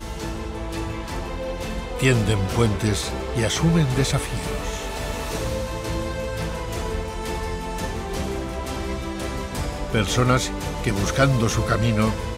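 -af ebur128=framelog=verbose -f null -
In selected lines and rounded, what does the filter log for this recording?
Integrated loudness:
  I:         -24.3 LUFS
  Threshold: -34.3 LUFS
Loudness range:
  LRA:         6.6 LU
  Threshold: -44.7 LUFS
  LRA low:   -28.7 LUFS
  LRA high:  -22.1 LUFS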